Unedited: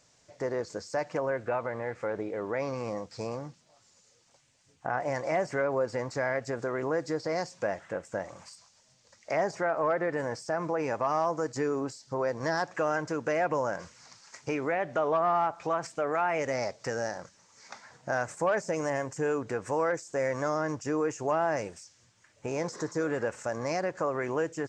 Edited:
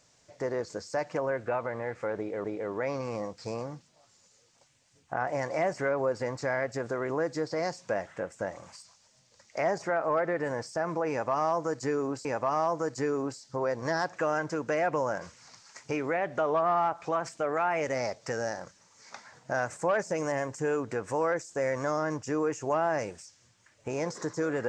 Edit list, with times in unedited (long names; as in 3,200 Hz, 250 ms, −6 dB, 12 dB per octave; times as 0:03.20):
0:02.17–0:02.44: repeat, 2 plays
0:10.83–0:11.98: repeat, 2 plays